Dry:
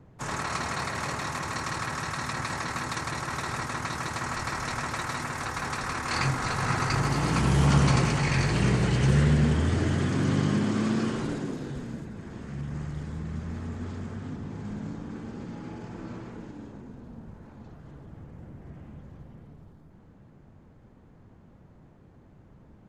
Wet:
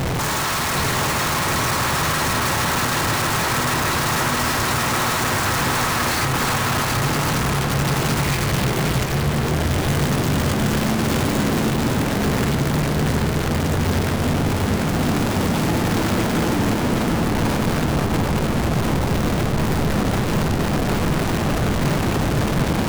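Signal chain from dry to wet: infinite clipping; darkening echo 0.747 s, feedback 69%, low-pass 2000 Hz, level -3.5 dB; gain +7.5 dB

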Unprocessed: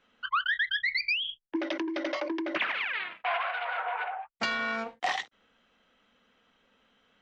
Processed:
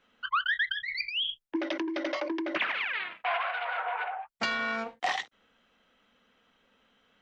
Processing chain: 0.7–1.43 negative-ratio compressor -31 dBFS, ratio -0.5

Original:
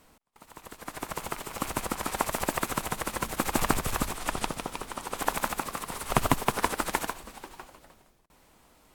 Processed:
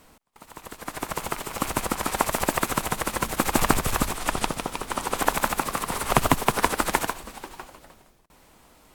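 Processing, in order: 4.9–7.05 three-band squash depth 40%; gain +5 dB

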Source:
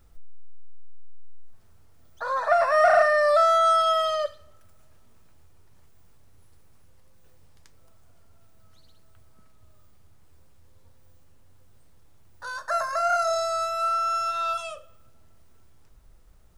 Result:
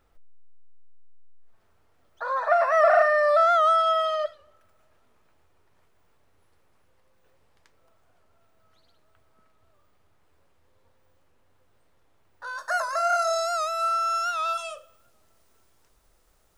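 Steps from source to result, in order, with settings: tone controls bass -12 dB, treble -10 dB, from 12.57 s treble +2 dB; record warp 78 rpm, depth 100 cents

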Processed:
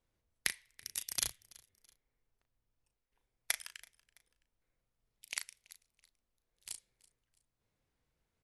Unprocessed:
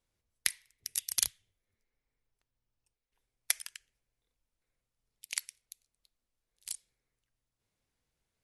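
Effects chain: high shelf 2900 Hz -8.5 dB; doubler 36 ms -9 dB; on a send: feedback echo 0.331 s, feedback 37%, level -23.5 dB; on the sum: gain +2 dB

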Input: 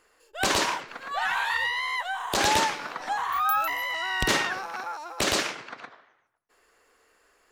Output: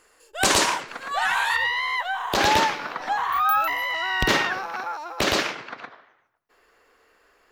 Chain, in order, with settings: bell 8800 Hz +5.5 dB 0.95 oct, from 1.56 s -10.5 dB; gain +4 dB

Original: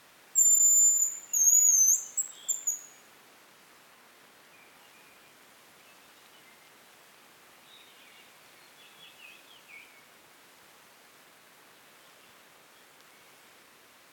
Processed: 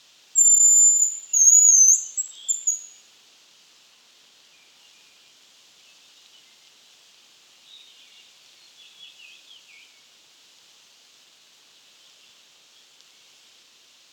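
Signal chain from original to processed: band shelf 4500 Hz +15 dB; gain -6.5 dB

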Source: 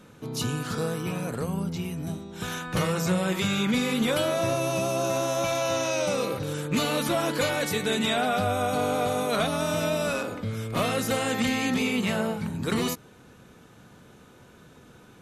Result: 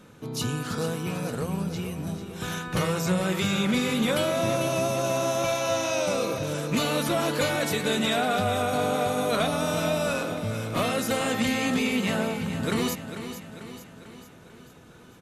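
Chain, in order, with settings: feedback echo 0.445 s, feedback 54%, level -10.5 dB

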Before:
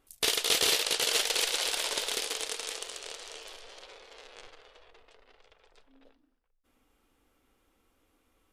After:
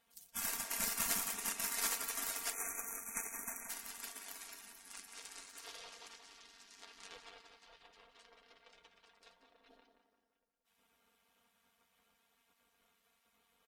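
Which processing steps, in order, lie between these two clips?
varispeed +6%; comb 5.6 ms, depth 44%; spectral gate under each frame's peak -15 dB weak; tape echo 0.106 s, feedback 46%, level -6 dB, low-pass 2600 Hz; spectral delete 1.49–2.18, 2600–5700 Hz; granular stretch 1.7×, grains 21 ms

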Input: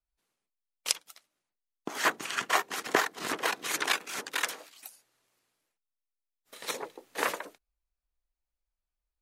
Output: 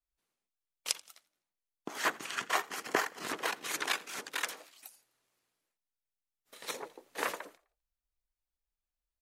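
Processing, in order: 2.69–3.24 notch 3700 Hz, Q 7.5; frequency-shifting echo 85 ms, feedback 43%, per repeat +59 Hz, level -22.5 dB; gain -4.5 dB

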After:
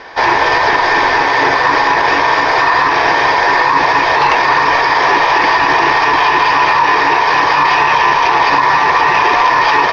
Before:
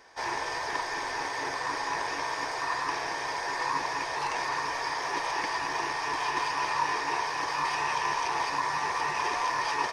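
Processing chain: LPF 4300 Hz 24 dB/oct; notches 50/100/150 Hz; maximiser +24 dB; gain -1 dB

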